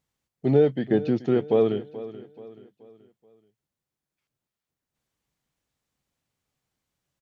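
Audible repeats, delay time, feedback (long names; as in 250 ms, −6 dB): 3, 430 ms, 42%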